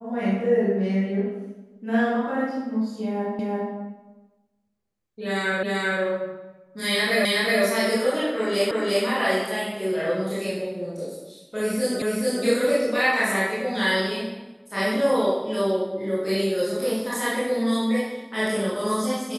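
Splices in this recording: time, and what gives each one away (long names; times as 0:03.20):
0:03.39: the same again, the last 0.34 s
0:05.63: the same again, the last 0.39 s
0:07.25: the same again, the last 0.37 s
0:08.71: the same again, the last 0.35 s
0:12.02: the same again, the last 0.43 s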